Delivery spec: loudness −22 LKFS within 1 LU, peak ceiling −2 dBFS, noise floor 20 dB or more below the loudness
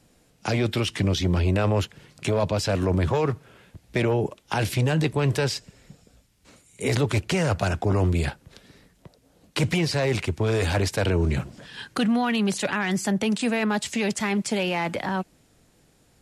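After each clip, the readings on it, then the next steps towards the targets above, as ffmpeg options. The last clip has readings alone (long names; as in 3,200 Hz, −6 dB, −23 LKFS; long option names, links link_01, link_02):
integrated loudness −25.0 LKFS; sample peak −10.0 dBFS; target loudness −22.0 LKFS
→ -af "volume=3dB"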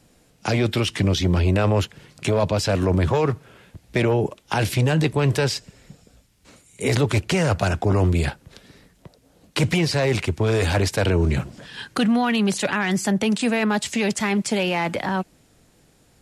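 integrated loudness −22.0 LKFS; sample peak −7.0 dBFS; background noise floor −59 dBFS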